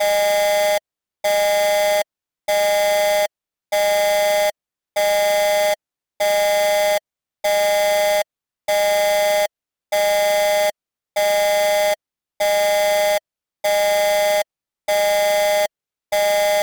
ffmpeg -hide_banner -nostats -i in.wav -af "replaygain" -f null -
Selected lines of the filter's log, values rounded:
track_gain = +1.6 dB
track_peak = 0.168